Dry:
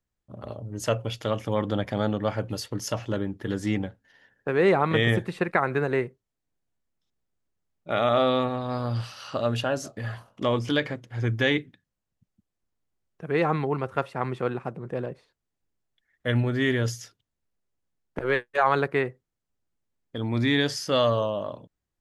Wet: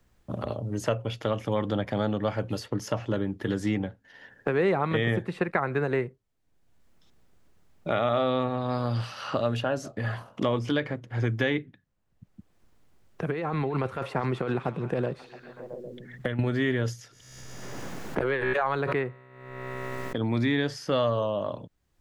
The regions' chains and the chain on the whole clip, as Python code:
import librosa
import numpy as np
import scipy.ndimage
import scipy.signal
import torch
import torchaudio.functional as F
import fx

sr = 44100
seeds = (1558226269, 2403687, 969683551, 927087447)

y = fx.chain(x, sr, fx.over_compress(threshold_db=-30.0, ratio=-1.0),
    fx.echo_stepped(ms=134, hz=4900.0, octaves=-0.7, feedback_pct=70, wet_db=-10), at=(13.26, 16.39))
y = fx.chain(y, sr, fx.comb_fb(f0_hz=64.0, decay_s=1.8, harmonics='all', damping=0.0, mix_pct=30),
    fx.pre_swell(db_per_s=29.0), at=(16.93, 20.21))
y = fx.high_shelf(y, sr, hz=4100.0, db=-7.0)
y = fx.band_squash(y, sr, depth_pct=70)
y = F.gain(torch.from_numpy(y), -1.0).numpy()